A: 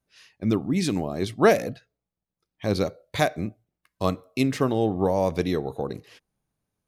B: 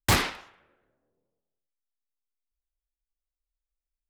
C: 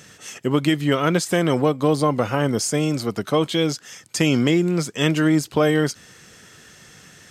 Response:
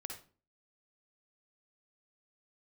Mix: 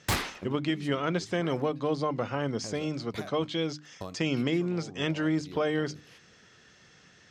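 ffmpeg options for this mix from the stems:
-filter_complex "[0:a]acompressor=threshold=-30dB:ratio=16,volume=-5dB[link_01];[1:a]volume=-6dB[link_02];[2:a]lowpass=frequency=5900:width=0.5412,lowpass=frequency=5900:width=1.3066,bandreject=frequency=50:width_type=h:width=6,bandreject=frequency=100:width_type=h:width=6,bandreject=frequency=150:width_type=h:width=6,bandreject=frequency=200:width_type=h:width=6,bandreject=frequency=250:width_type=h:width=6,bandreject=frequency=300:width_type=h:width=6,volume=-9.5dB,asplit=2[link_03][link_04];[link_04]apad=whole_len=303375[link_05];[link_01][link_05]sidechaincompress=threshold=-32dB:ratio=8:attack=21:release=437[link_06];[link_06][link_02][link_03]amix=inputs=3:normalize=0"

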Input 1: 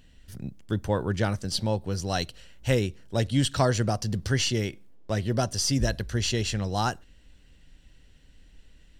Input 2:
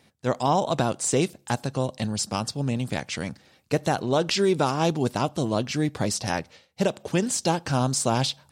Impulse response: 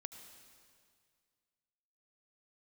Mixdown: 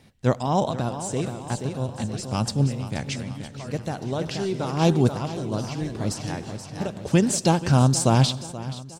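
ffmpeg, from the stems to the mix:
-filter_complex "[0:a]volume=-17.5dB,asplit=2[link_01][link_02];[1:a]lowshelf=frequency=190:gain=10.5,volume=-0.5dB,asplit=3[link_03][link_04][link_05];[link_04]volume=-8dB[link_06];[link_05]volume=-14dB[link_07];[link_02]apad=whole_len=375628[link_08];[link_03][link_08]sidechaincompress=threshold=-57dB:ratio=8:attack=10:release=159[link_09];[2:a]atrim=start_sample=2205[link_10];[link_06][link_10]afir=irnorm=-1:irlink=0[link_11];[link_07]aecho=0:1:479|958|1437|1916|2395|2874|3353|3832:1|0.53|0.281|0.149|0.0789|0.0418|0.0222|0.0117[link_12];[link_01][link_09][link_11][link_12]amix=inputs=4:normalize=0"

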